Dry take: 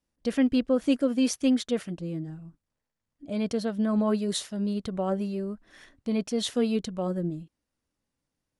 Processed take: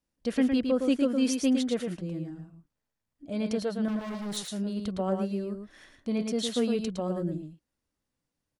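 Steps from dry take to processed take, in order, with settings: 3.88–4.37 overloaded stage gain 33 dB; on a send: echo 0.111 s -5.5 dB; on the sum: gain -2 dB

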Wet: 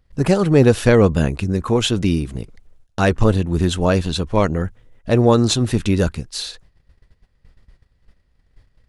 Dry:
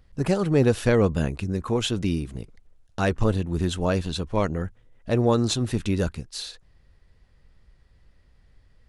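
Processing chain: gate -53 dBFS, range -12 dB; gain +7 dB

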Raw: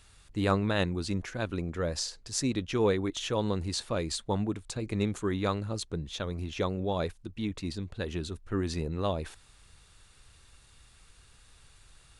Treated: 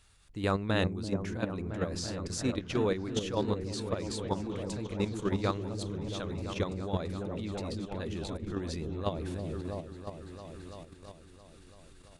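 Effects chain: repeats that get brighter 0.336 s, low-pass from 400 Hz, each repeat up 1 oct, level -3 dB; level quantiser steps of 9 dB

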